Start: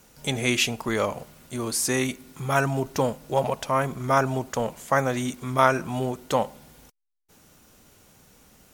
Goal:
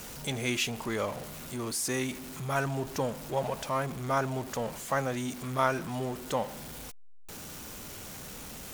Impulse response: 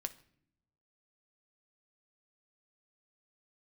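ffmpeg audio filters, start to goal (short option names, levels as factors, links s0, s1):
-af "aeval=exprs='val(0)+0.5*0.0335*sgn(val(0))':c=same,volume=0.376"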